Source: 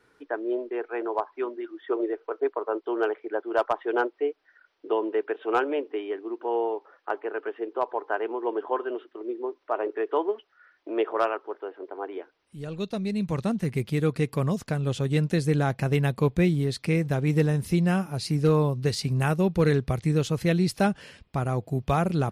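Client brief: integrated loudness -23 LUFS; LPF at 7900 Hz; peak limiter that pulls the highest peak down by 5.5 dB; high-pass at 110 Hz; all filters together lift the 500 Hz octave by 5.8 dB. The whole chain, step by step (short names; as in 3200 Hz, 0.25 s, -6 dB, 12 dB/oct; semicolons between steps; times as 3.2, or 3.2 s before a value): HPF 110 Hz; LPF 7900 Hz; bell 500 Hz +7 dB; gain +2 dB; limiter -10 dBFS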